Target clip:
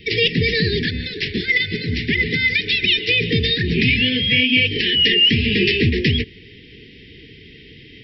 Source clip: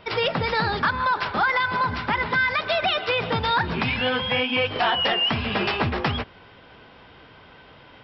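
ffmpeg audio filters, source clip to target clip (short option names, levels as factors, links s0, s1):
-af "asuperstop=centerf=910:order=20:qfactor=0.67,volume=2.82"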